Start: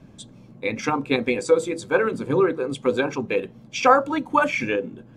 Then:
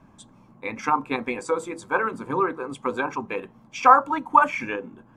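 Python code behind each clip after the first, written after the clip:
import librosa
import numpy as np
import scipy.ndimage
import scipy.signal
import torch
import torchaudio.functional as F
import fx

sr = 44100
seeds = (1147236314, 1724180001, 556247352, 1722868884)

y = fx.graphic_eq(x, sr, hz=(125, 500, 1000, 4000), db=(-5, -6, 12, -6))
y = F.gain(torch.from_numpy(y), -4.0).numpy()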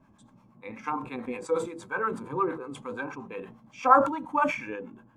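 y = fx.hpss(x, sr, part='percussive', gain_db=-12)
y = fx.harmonic_tremolo(y, sr, hz=8.5, depth_pct=70, crossover_hz=650.0)
y = fx.sustainer(y, sr, db_per_s=100.0)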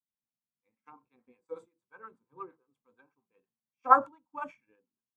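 y = fx.upward_expand(x, sr, threshold_db=-45.0, expansion=2.5)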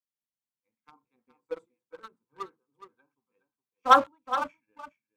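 y = fx.leveller(x, sr, passes=2)
y = y + 10.0 ** (-12.0 / 20.0) * np.pad(y, (int(417 * sr / 1000.0), 0))[:len(y)]
y = F.gain(torch.from_numpy(y), -1.5).numpy()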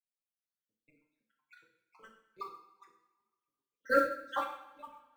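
y = fx.spec_dropout(x, sr, seeds[0], share_pct=72)
y = fx.rev_double_slope(y, sr, seeds[1], early_s=0.67, late_s=1.8, knee_db=-18, drr_db=0.0)
y = fx.mod_noise(y, sr, seeds[2], snr_db=29)
y = F.gain(torch.from_numpy(y), -4.0).numpy()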